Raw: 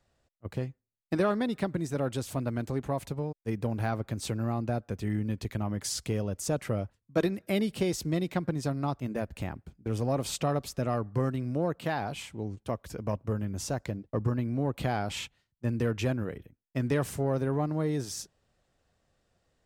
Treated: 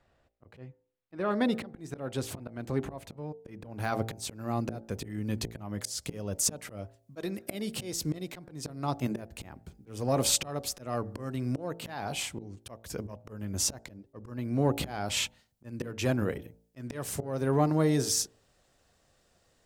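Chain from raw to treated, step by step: tone controls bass -3 dB, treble -12 dB, from 1.3 s treble -4 dB, from 3.78 s treble +5 dB; auto swell 0.379 s; de-hum 56.31 Hz, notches 16; gain +6 dB

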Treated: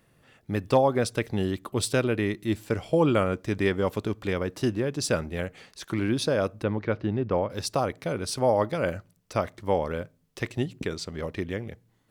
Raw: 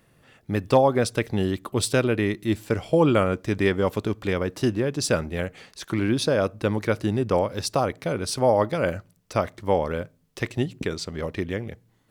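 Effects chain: 6.63–7.5 air absorption 270 m; gain -3 dB

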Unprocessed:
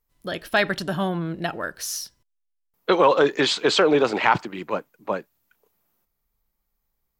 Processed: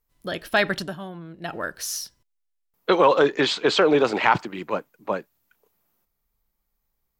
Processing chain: 0.8–1.56 dip -11.5 dB, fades 0.16 s; 3.26–3.82 high shelf 8200 Hz -12 dB

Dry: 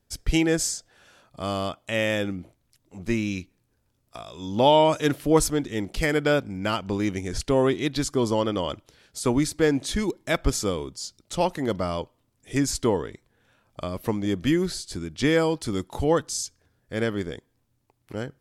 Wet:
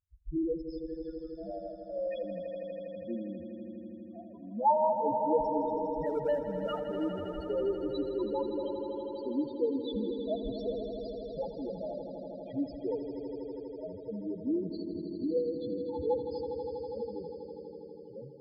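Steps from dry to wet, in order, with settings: LFO low-pass square 5.7 Hz 960–3600 Hz; loudest bins only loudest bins 2; 6.06–7.46 sample leveller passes 1; HPF 74 Hz 6 dB/oct; swelling echo 81 ms, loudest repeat 5, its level -11 dB; gain -7.5 dB

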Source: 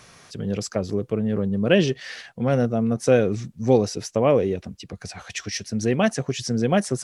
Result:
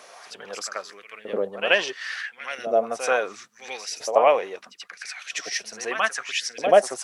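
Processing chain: LFO high-pass saw up 0.75 Hz 560–2400 Hz; on a send: reverse echo 83 ms -10 dB; on the sum: LFO bell 1.5 Hz 230–2800 Hz +7 dB

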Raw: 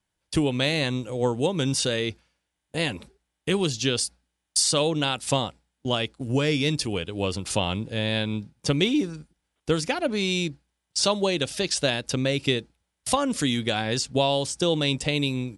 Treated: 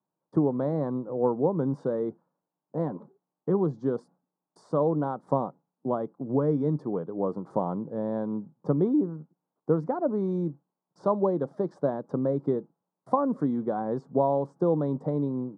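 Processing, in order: elliptic band-pass 150–1100 Hz, stop band 40 dB

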